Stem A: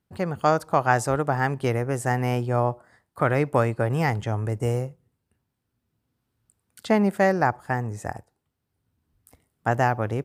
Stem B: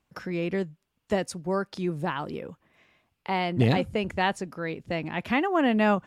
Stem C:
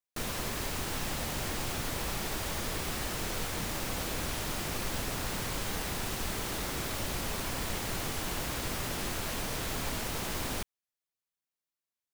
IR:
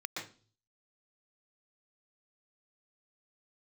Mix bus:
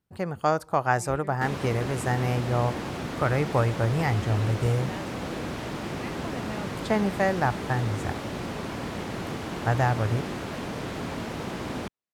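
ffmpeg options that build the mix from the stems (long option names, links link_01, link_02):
-filter_complex "[0:a]asubboost=boost=5.5:cutoff=93,volume=-3dB[link_01];[1:a]adelay=700,volume=-16dB[link_02];[2:a]highpass=210,aemphasis=mode=reproduction:type=riaa,adelay=1250,volume=2.5dB[link_03];[link_01][link_02][link_03]amix=inputs=3:normalize=0"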